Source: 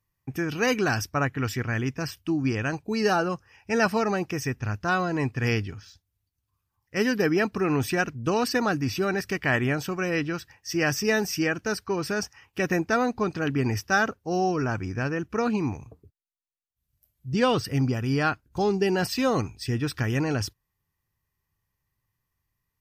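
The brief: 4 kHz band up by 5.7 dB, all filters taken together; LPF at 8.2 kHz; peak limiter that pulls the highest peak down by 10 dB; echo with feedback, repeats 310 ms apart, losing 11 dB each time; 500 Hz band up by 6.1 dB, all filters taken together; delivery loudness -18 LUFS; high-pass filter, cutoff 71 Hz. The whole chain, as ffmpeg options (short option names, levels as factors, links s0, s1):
-af "highpass=71,lowpass=8200,equalizer=f=500:t=o:g=7.5,equalizer=f=4000:t=o:g=8.5,alimiter=limit=0.168:level=0:latency=1,aecho=1:1:310|620|930:0.282|0.0789|0.0221,volume=2.37"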